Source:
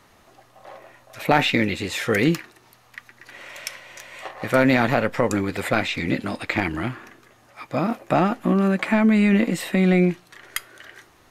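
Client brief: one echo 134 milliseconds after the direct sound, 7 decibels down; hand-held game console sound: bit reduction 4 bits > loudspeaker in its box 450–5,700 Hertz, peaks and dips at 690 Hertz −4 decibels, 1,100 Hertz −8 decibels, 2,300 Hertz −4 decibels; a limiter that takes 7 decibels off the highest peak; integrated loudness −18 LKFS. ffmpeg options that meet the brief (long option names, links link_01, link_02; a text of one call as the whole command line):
ffmpeg -i in.wav -af "alimiter=limit=-11.5dB:level=0:latency=1,aecho=1:1:134:0.447,acrusher=bits=3:mix=0:aa=0.000001,highpass=450,equalizer=frequency=690:width_type=q:width=4:gain=-4,equalizer=frequency=1100:width_type=q:width=4:gain=-8,equalizer=frequency=2300:width_type=q:width=4:gain=-4,lowpass=frequency=5700:width=0.5412,lowpass=frequency=5700:width=1.3066,volume=8.5dB" out.wav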